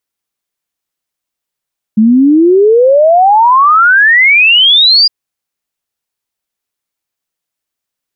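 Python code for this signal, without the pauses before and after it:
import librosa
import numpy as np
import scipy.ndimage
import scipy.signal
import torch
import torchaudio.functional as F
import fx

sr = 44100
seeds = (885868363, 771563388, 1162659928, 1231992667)

y = fx.ess(sr, length_s=3.11, from_hz=210.0, to_hz=4900.0, level_db=-3.0)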